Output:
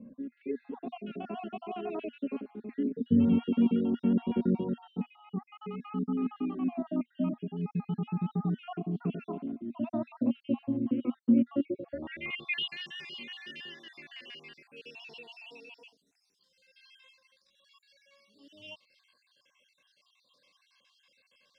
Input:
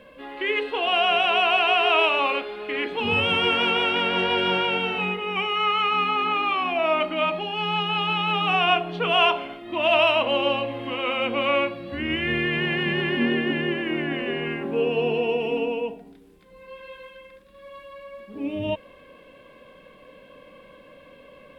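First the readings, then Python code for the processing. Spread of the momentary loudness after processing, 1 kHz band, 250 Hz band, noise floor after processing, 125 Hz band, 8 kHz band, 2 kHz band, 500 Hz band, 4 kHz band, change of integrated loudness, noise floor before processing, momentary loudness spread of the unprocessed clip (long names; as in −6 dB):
21 LU, −22.5 dB, +0.5 dB, −74 dBFS, −2.5 dB, can't be measured, −21.0 dB, −15.5 dB, −19.5 dB, −10.0 dB, −50 dBFS, 11 LU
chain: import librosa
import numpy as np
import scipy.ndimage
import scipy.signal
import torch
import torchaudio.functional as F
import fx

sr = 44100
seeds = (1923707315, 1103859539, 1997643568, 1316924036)

y = fx.spec_dropout(x, sr, seeds[0], share_pct=54)
y = fx.bass_treble(y, sr, bass_db=13, treble_db=6)
y = fx.filter_sweep_bandpass(y, sr, from_hz=240.0, to_hz=5100.0, start_s=11.55, end_s=12.78, q=5.8)
y = y * librosa.db_to_amplitude(7.0)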